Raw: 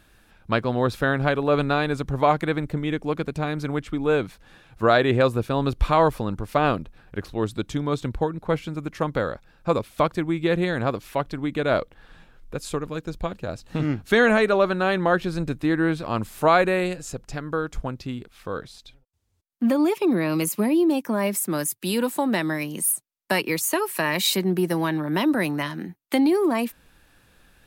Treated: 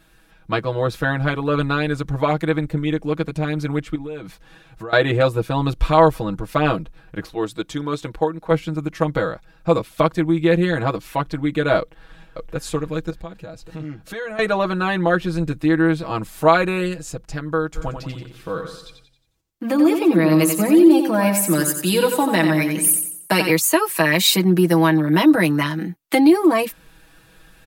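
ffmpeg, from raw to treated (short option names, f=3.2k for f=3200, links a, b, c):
-filter_complex "[0:a]asettb=1/sr,asplit=3[a][b][c];[a]atrim=end=3.954[d];[b]atrim=start=3.95:end=4.93,asetpts=PTS-STARTPTS,afade=t=in:d=0.004:c=qsin,afade=t=out:st=0.976:d=0.004:c=qsin,acompressor=threshold=-30dB:ratio=16:attack=3.2:release=140:knee=1:detection=peak[e];[c]atrim=start=4.926[f];[d][e]acrossfade=d=0.004:c1=hsin:c2=qsin[g];[g][f]acrossfade=d=0.004:c1=qsin:c2=hsin,asettb=1/sr,asplit=3[h][i][j];[h]atrim=end=7.264[k];[i]atrim=start=7.26:end=8.51,asetpts=PTS-STARTPTS,afade=t=in:d=0.004:c=qsin,afade=t=out:st=1.246:d=0.004:c=qsin,bass=f=250:g=-9,treble=f=4k:g=0[l];[j]atrim=start=8.506[m];[k][l]acrossfade=d=0.004:c1=hsin:c2=qsin[n];[n][m]acrossfade=d=0.004:c1=qsin:c2=hsin,asplit=2[o][p];[p]afade=t=in:st=11.79:d=0.01,afade=t=out:st=12.55:d=0.01,aecho=0:1:570|1140|1710|2280|2850|3420|3990:0.749894|0.374947|0.187474|0.0937368|0.0468684|0.0234342|0.0117171[q];[o][q]amix=inputs=2:normalize=0,asettb=1/sr,asplit=3[r][s][t];[r]atrim=end=13.104[u];[s]atrim=start=13.1:end=14.39,asetpts=PTS-STARTPTS,afade=t=in:d=0.004:c=qsin,afade=t=out:st=1.286:d=0.004:c=qsin,acompressor=threshold=-41dB:ratio=2:attack=3.2:release=140:knee=1:detection=peak[v];[t]atrim=start=14.386[w];[u][v]acrossfade=d=0.004:c1=hsin:c2=qsin[x];[x][w]acrossfade=d=0.004:c1=qsin:c2=hsin,asplit=3[y][z][aa];[y]afade=t=out:st=17.75:d=0.02[ab];[z]aecho=1:1:90|180|270|360|450:0.447|0.192|0.0826|0.0355|0.0153,afade=t=in:st=17.75:d=0.02,afade=t=out:st=23.51:d=0.02[ac];[aa]afade=t=in:st=23.51:d=0.02[ad];[ab][ac][ad]amix=inputs=3:normalize=0,aecho=1:1:6.2:0.96,dynaudnorm=f=640:g=11:m=11.5dB,volume=-1dB"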